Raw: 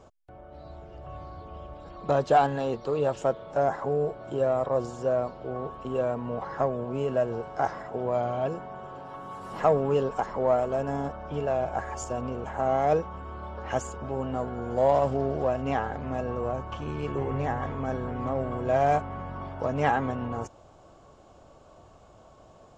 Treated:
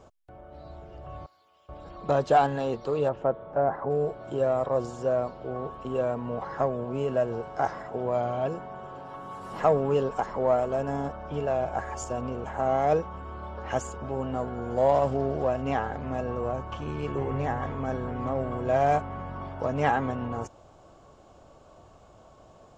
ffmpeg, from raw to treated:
ffmpeg -i in.wav -filter_complex "[0:a]asettb=1/sr,asplit=3[link_01][link_02][link_03];[link_01]atrim=end=1.264[link_04];[link_02]atrim=start=1.26:end=1.69,asetpts=PTS-STARTPTS,afade=type=in:duration=0.004:curve=qsin,afade=type=out:start_time=0.426:duration=0.004:curve=qsin,aderivative[link_05];[link_03]atrim=start=1.686[link_06];[link_04][link_05]acrossfade=duration=0.004:curve1=hsin:curve2=qsin[link_07];[link_07][link_06]acrossfade=duration=0.004:curve1=qsin:curve2=hsin,asplit=3[link_08][link_09][link_10];[link_08]afade=type=out:start_time=3.08:duration=0.02[link_11];[link_09]lowpass=1600,afade=type=in:start_time=3.08:duration=0.02,afade=type=out:start_time=3.89:duration=0.02[link_12];[link_10]afade=type=in:start_time=3.89:duration=0.02[link_13];[link_11][link_12][link_13]amix=inputs=3:normalize=0" out.wav

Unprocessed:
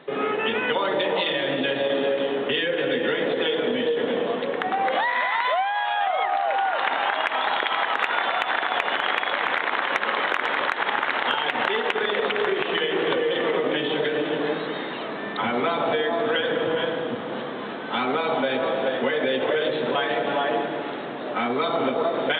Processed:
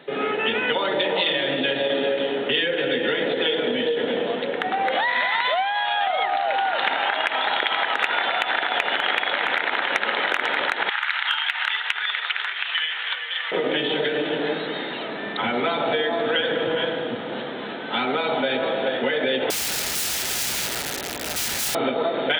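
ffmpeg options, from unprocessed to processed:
ffmpeg -i in.wav -filter_complex "[0:a]asettb=1/sr,asplit=3[link_01][link_02][link_03];[link_01]atrim=end=5.084[link_04];[link_02]atrim=start=5.08:end=6.92,asetpts=PTS-STARTPTS,afade=type=in:duration=0.004:curve=qsin,afade=type=out:start_time=1.836:duration=0.004:curve=qsin,bass=frequency=250:gain=7,treble=frequency=4000:gain=7[link_05];[link_03]atrim=start=6.916[link_06];[link_04][link_05]acrossfade=duration=0.004:curve1=hsin:curve2=qsin[link_07];[link_07][link_06]acrossfade=duration=0.004:curve1=qsin:curve2=hsin,asettb=1/sr,asplit=3[link_08][link_09][link_10];[link_08]atrim=end=10.894[link_11];[link_09]atrim=start=10.89:end=13.52,asetpts=PTS-STARTPTS,afade=type=in:duration=0.004:curve=qsin,afade=type=out:start_time=2.626:duration=0.004:curve=qsin,highpass=frequency=1100:width=0.5412,highpass=frequency=1100:width=1.3066[link_12];[link_10]atrim=start=13.516[link_13];[link_11][link_12]acrossfade=duration=0.004:curve1=hsin:curve2=qsin[link_14];[link_14][link_13]acrossfade=duration=0.004:curve1=qsin:curve2=hsin,asettb=1/sr,asplit=3[link_15][link_16][link_17];[link_15]atrim=end=19.504[link_18];[link_16]atrim=start=19.5:end=21.75,asetpts=PTS-STARTPTS,afade=type=in:duration=0.004:curve=qsin,afade=type=out:start_time=2.246:duration=0.004:curve=qsin,aeval=exprs='(mod(18.8*val(0)+1,2)-1)/18.8':channel_layout=same[link_19];[link_17]atrim=start=21.746[link_20];[link_18][link_19]acrossfade=duration=0.004:curve1=hsin:curve2=qsin[link_21];[link_21][link_20]acrossfade=duration=0.004:curve1=qsin:curve2=hsin,highpass=43,highshelf=frequency=3000:gain=7.5,bandreject=frequency=1100:width=6.2" out.wav

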